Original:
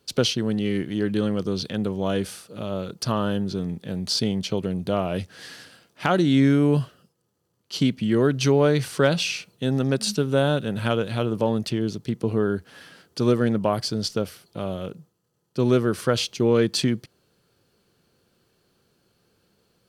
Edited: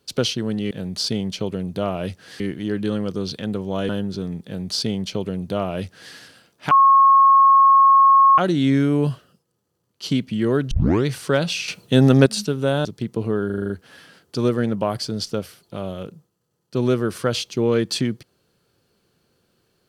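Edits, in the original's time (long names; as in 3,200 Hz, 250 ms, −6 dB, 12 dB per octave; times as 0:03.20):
0:02.20–0:03.26: remove
0:03.82–0:05.51: duplicate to 0:00.71
0:06.08: insert tone 1,090 Hz −9 dBFS 1.67 s
0:08.41: tape start 0.35 s
0:09.38–0:09.96: clip gain +9.5 dB
0:10.55–0:11.92: remove
0:12.53: stutter 0.04 s, 7 plays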